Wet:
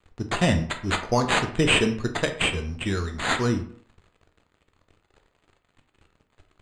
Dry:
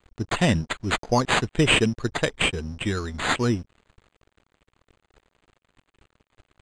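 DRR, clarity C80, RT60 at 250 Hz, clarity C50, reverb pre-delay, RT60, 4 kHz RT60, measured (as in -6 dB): 5.5 dB, 14.5 dB, 0.50 s, 10.5 dB, 9 ms, 0.55 s, 0.35 s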